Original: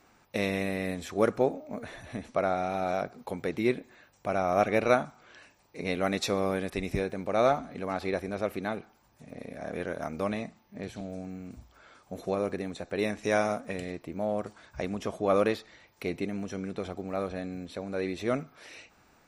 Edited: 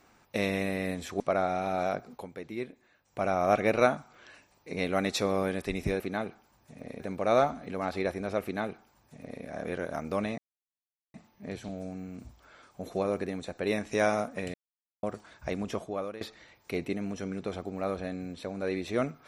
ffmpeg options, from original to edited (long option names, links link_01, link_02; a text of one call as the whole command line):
ffmpeg -i in.wav -filter_complex "[0:a]asplit=10[link_01][link_02][link_03][link_04][link_05][link_06][link_07][link_08][link_09][link_10];[link_01]atrim=end=1.202[link_11];[link_02]atrim=start=2.278:end=3.35,asetpts=PTS-STARTPTS,afade=type=out:start_time=0.922:duration=0.15:silence=0.334965[link_12];[link_03]atrim=start=3.35:end=4.13,asetpts=PTS-STARTPTS,volume=-9.5dB[link_13];[link_04]atrim=start=4.13:end=7.082,asetpts=PTS-STARTPTS,afade=type=in:duration=0.15:silence=0.334965[link_14];[link_05]atrim=start=8.508:end=9.512[link_15];[link_06]atrim=start=7.078:end=10.46,asetpts=PTS-STARTPTS,afade=type=out:start_time=3.378:duration=0.004:curve=hsin,apad=pad_dur=0.76[link_16];[link_07]atrim=start=10.46:end=13.86,asetpts=PTS-STARTPTS,afade=type=in:duration=0.004:curve=hsin,afade=type=out:start_time=3.396:duration=0.004:curve=hsin[link_17];[link_08]atrim=start=13.86:end=14.35,asetpts=PTS-STARTPTS,volume=0[link_18];[link_09]atrim=start=14.35:end=15.53,asetpts=PTS-STARTPTS,afade=type=in:duration=0.004:curve=hsin,afade=type=out:start_time=0.72:duration=0.46:curve=qua:silence=0.141254[link_19];[link_10]atrim=start=15.53,asetpts=PTS-STARTPTS,afade=type=in:duration=0.004:curve=hsin:silence=0.141254[link_20];[link_12][link_13][link_14]concat=n=3:v=0:a=1[link_21];[link_11][link_21]acrossfade=duration=0.004:curve1=hsin:curve2=hsin[link_22];[link_22][link_15]acrossfade=duration=0.004:curve1=hsin:curve2=hsin[link_23];[link_16][link_17][link_18][link_19][link_20]concat=n=5:v=0:a=1[link_24];[link_23][link_24]acrossfade=duration=0.004:curve1=hsin:curve2=hsin" out.wav